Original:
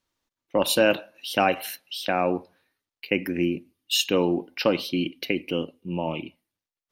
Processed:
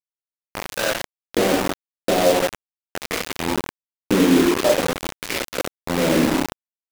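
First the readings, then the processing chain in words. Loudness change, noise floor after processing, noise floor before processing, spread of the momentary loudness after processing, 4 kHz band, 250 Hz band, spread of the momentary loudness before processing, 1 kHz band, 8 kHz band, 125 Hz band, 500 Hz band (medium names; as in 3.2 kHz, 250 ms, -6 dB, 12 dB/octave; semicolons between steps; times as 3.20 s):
+4.5 dB, under -85 dBFS, under -85 dBFS, 14 LU, +1.0 dB, +6.5 dB, 11 LU, +3.5 dB, +6.5 dB, +5.0 dB, +4.5 dB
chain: low-pass 3.4 kHz 6 dB/octave; bass shelf 470 Hz +11.5 dB; hum notches 50/100/150/200/250/300/350/400 Hz; level rider gain up to 11 dB; in parallel at +2.5 dB: peak limiter -8.5 dBFS, peak gain reduction 7.5 dB; on the sum: compression 4:1, threshold -19 dBFS, peak gain reduction 14 dB; wah-wah 0.43 Hz 260–1600 Hz, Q 2.3; on a send: shuffle delay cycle 926 ms, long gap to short 3:1, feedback 40%, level -14 dB; on the sum: gated-style reverb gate 360 ms falling, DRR -6 dB; bit crusher 4-bit; warped record 33 1/3 rpm, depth 160 cents; trim +2.5 dB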